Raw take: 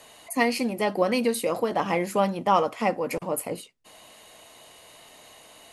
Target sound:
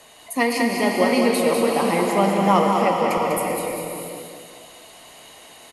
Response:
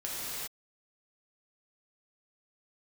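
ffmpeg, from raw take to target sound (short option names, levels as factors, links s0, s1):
-filter_complex "[0:a]aecho=1:1:197|394|591|788|985|1182:0.531|0.25|0.117|0.0551|0.0259|0.0122,asplit=2[s0][s1];[1:a]atrim=start_sample=2205,asetrate=26019,aresample=44100[s2];[s1][s2]afir=irnorm=-1:irlink=0,volume=0.422[s3];[s0][s3]amix=inputs=2:normalize=0,volume=0.891"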